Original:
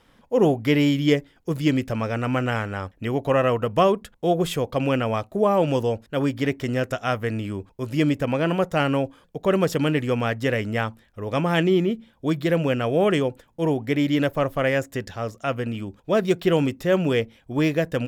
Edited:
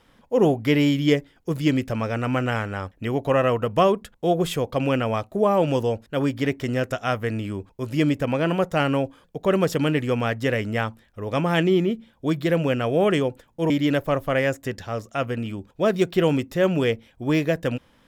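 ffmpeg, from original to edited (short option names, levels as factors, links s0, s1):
-filter_complex "[0:a]asplit=2[s0][s1];[s0]atrim=end=13.702[s2];[s1]atrim=start=13.988[s3];[s2][s3]acrossfade=d=0.004:c1=hsin:c2=hsin"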